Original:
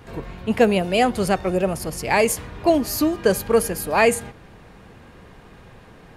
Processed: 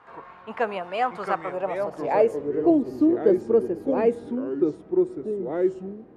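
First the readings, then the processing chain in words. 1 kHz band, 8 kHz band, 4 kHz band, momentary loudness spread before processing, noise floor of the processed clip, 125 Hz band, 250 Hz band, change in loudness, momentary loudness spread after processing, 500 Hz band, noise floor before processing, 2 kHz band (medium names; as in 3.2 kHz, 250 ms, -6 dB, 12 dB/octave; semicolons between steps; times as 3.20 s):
-4.5 dB, under -25 dB, under -15 dB, 9 LU, -48 dBFS, -10.5 dB, -0.5 dB, -4.0 dB, 9 LU, -1.5 dB, -47 dBFS, -10.5 dB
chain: ever faster or slower copies 514 ms, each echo -4 st, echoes 2, each echo -6 dB; band-pass sweep 1.1 kHz -> 350 Hz, 1.43–2.72 s; trim +2.5 dB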